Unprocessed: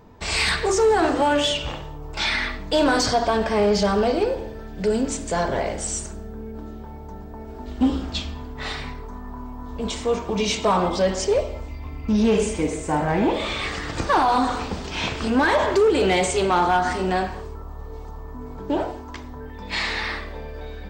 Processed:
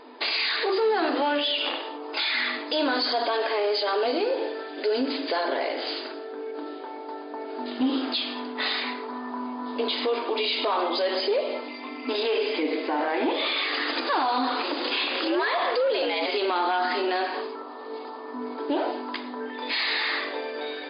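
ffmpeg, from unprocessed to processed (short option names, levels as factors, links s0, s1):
-filter_complex "[0:a]asettb=1/sr,asplit=3[s0][s1][s2];[s0]atrim=end=14.634[s3];[s1]atrim=start=14.63:end=16.26,asetpts=PTS-STARTPTS,afade=t=in:d=0.004:c=qsin,afade=t=out:st=1.626:d=0.004:c=qsin,afreqshift=100[s4];[s2]atrim=start=16.256[s5];[s3][s4]acrossfade=d=0.004:c1=hsin:c2=qsin[s6];[s6][s5]acrossfade=d=0.004:c1=qsin:c2=hsin,afftfilt=real='re*between(b*sr/4096,240,5000)':imag='im*between(b*sr/4096,240,5000)':win_size=4096:overlap=0.75,highshelf=f=3000:g=11,alimiter=limit=0.075:level=0:latency=1:release=136,volume=1.78"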